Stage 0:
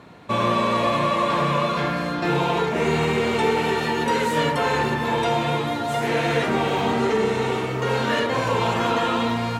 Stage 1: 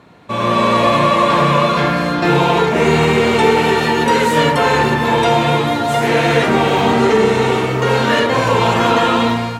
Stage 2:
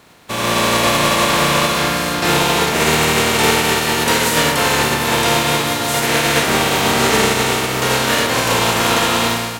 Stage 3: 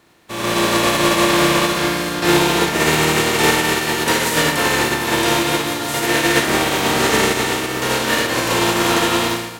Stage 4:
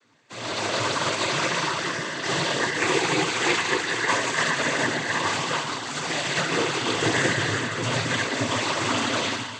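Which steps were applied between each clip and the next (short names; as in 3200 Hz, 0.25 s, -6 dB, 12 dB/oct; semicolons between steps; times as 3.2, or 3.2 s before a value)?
AGC gain up to 10.5 dB
spectral contrast lowered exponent 0.49; gain -2 dB
small resonant body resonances 340/1800 Hz, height 10 dB, ringing for 95 ms; on a send: flutter echo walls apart 9.9 m, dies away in 0.31 s; on the sum: upward expander 1.5:1, over -24 dBFS; gain -1 dB
metallic resonator 130 Hz, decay 0.23 s, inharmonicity 0.002; thinning echo 0.147 s, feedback 52%, level -11.5 dB; noise vocoder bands 16; gain +2.5 dB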